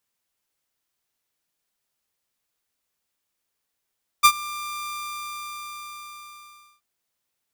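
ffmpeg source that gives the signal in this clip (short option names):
-f lavfi -i "aevalsrc='0.501*(2*mod(1190*t,1)-1)':d=2.58:s=44100,afade=t=in:d=0.021,afade=t=out:st=0.021:d=0.066:silence=0.0841,afade=t=out:st=0.65:d=1.93"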